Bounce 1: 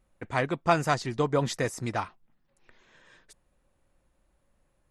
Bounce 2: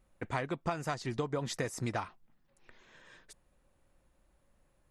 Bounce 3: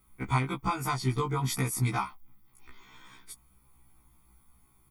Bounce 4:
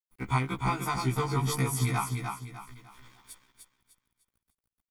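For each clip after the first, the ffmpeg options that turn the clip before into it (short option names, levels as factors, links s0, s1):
-af "acompressor=threshold=0.0316:ratio=16"
-af "aexciter=amount=4.2:drive=6.9:freq=9800,aecho=1:1:0.9:0.96,afftfilt=real='re*1.73*eq(mod(b,3),0)':imag='im*1.73*eq(mod(b,3),0)':win_size=2048:overlap=0.75,volume=1.88"
-af "aeval=exprs='sgn(val(0))*max(abs(val(0))-0.00224,0)':c=same,aecho=1:1:301|602|903|1204:0.562|0.191|0.065|0.0221"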